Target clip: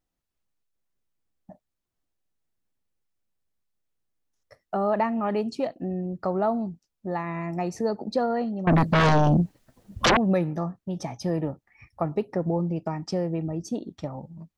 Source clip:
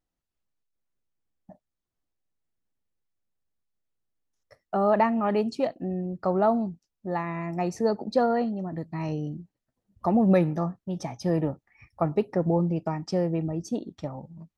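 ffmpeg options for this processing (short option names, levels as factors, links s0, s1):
-filter_complex "[0:a]asplit=2[s0][s1];[s1]acompressor=threshold=0.0316:ratio=6,volume=1.26[s2];[s0][s2]amix=inputs=2:normalize=0,asettb=1/sr,asplit=3[s3][s4][s5];[s3]atrim=end=8.674[s6];[s4]atrim=start=8.67:end=10.17,asetpts=PTS-STARTPTS,afade=t=in:d=0.004:c=qsin,afade=t=out:st=1.496:d=0.004:c=qsin,aeval=exprs='0.316*sin(PI/2*6.31*val(0)/0.316)':c=same[s7];[s5]atrim=start=10.166[s8];[s6][s7]acrossfade=d=0.004:c1=hsin:c2=qsin[s9];[s9][s8]acrossfade=d=0.004:c1=qsin:c2=hsin,volume=0.562"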